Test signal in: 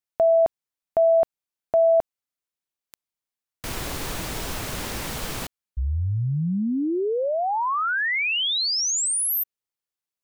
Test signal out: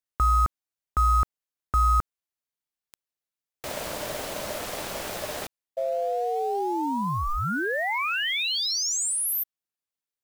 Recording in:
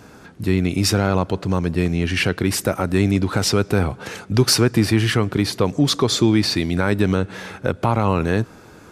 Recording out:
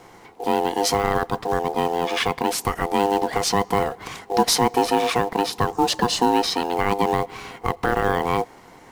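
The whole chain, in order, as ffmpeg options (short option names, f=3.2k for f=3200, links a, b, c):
-af "acrusher=bits=6:mode=log:mix=0:aa=0.000001,aeval=exprs='val(0)*sin(2*PI*600*n/s)':c=same"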